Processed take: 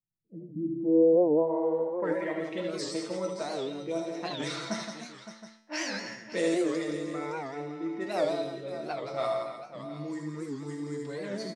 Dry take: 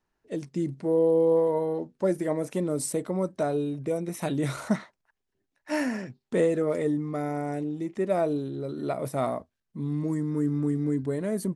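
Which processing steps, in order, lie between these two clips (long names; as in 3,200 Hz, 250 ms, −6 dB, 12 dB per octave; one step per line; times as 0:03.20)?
low-pass that shuts in the quiet parts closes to 510 Hz, open at −20.5 dBFS
RIAA equalisation recording
comb filter 5.9 ms, depth 50%
low-pass filter sweep 140 Hz → 5,100 Hz, 0:00.17–0:02.80
tuned comb filter 110 Hz, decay 0.61 s, harmonics all, mix 80%
multi-tap delay 73/80/170/307/564/719 ms −8.5/−7/−7/−12/−12/−15 dB
wow of a warped record 78 rpm, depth 160 cents
level +5 dB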